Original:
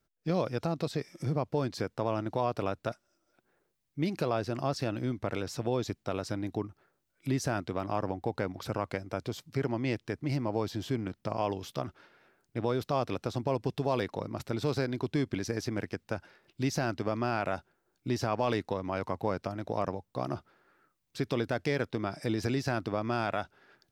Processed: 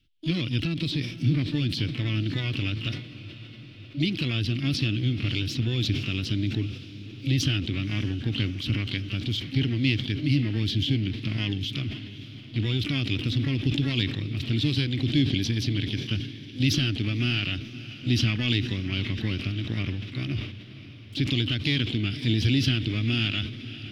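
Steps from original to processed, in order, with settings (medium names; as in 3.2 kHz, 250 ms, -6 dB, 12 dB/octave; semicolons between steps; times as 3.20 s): tone controls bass +6 dB, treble +2 dB; harmony voices +12 st -9 dB; FFT filter 110 Hz 0 dB, 180 Hz -8 dB, 300 Hz -2 dB, 480 Hz -21 dB, 930 Hz -28 dB, 3.1 kHz +12 dB, 7.5 kHz -15 dB; echo that smears into a reverb 566 ms, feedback 66%, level -15.5 dB; decay stretcher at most 81 dB/s; trim +6.5 dB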